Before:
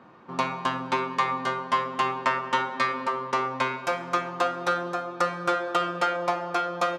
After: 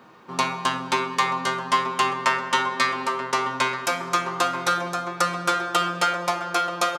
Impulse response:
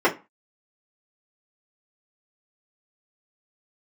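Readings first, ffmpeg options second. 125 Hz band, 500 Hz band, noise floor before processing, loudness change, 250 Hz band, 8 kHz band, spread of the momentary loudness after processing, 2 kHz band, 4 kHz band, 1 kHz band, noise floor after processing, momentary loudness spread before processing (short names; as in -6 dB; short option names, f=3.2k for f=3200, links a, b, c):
+3.0 dB, 0.0 dB, -40 dBFS, +3.5 dB, +1.5 dB, +12.5 dB, 4 LU, +4.5 dB, +8.0 dB, +3.0 dB, -36 dBFS, 4 LU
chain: -filter_complex "[0:a]crystalizer=i=4:c=0,asplit=2[a][b];[b]adelay=932.9,volume=-9dB,highshelf=f=4k:g=-21[c];[a][c]amix=inputs=2:normalize=0,asplit=2[d][e];[1:a]atrim=start_sample=2205,lowshelf=f=380:g=10.5[f];[e][f]afir=irnorm=-1:irlink=0,volume=-34.5dB[g];[d][g]amix=inputs=2:normalize=0"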